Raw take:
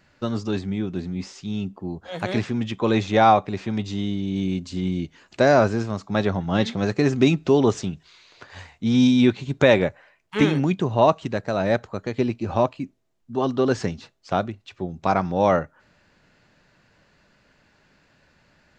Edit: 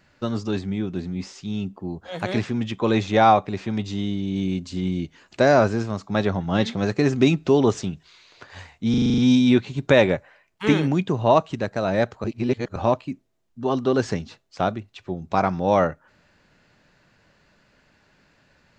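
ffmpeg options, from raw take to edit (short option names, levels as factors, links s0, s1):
-filter_complex "[0:a]asplit=10[s0][s1][s2][s3][s4][s5][s6][s7][s8][s9];[s0]atrim=end=8.942[s10];[s1]atrim=start=8.898:end=8.942[s11];[s2]atrim=start=8.898:end=8.942[s12];[s3]atrim=start=8.898:end=8.942[s13];[s4]atrim=start=8.898:end=8.942[s14];[s5]atrim=start=8.898:end=8.942[s15];[s6]atrim=start=8.898:end=8.942[s16];[s7]atrim=start=8.898:end=11.962[s17];[s8]atrim=start=11.958:end=12.482,asetpts=PTS-STARTPTS,areverse[s18];[s9]atrim=start=12.478[s19];[s10][s11]acrossfade=d=0.004:c1=hsin:c2=hsin[s20];[s20][s12]acrossfade=d=0.004:c1=hsin:c2=hsin[s21];[s21][s13]acrossfade=d=0.004:c1=hsin:c2=hsin[s22];[s22][s14]acrossfade=d=0.004:c1=hsin:c2=hsin[s23];[s23][s15]acrossfade=d=0.004:c1=hsin:c2=hsin[s24];[s24][s16]acrossfade=d=0.004:c1=hsin:c2=hsin[s25];[s25][s17]acrossfade=d=0.004:c1=hsin:c2=hsin[s26];[s26][s18]acrossfade=d=0.004:c1=hsin:c2=hsin[s27];[s27][s19]acrossfade=d=0.004:c1=hsin:c2=hsin"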